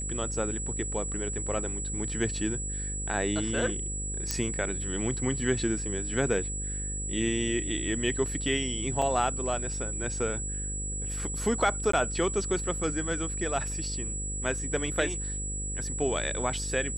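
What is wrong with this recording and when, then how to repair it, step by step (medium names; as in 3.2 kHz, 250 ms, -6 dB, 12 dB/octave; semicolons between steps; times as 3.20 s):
buzz 50 Hz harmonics 11 -36 dBFS
whine 7.8 kHz -34 dBFS
4.31 s: pop -12 dBFS
9.02 s: dropout 2.7 ms
11.92–11.93 s: dropout 14 ms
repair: de-click; de-hum 50 Hz, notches 11; band-stop 7.8 kHz, Q 30; interpolate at 9.02 s, 2.7 ms; interpolate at 11.92 s, 14 ms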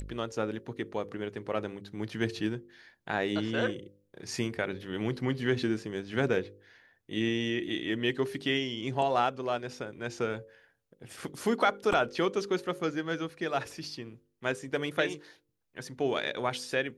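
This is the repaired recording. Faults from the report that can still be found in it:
nothing left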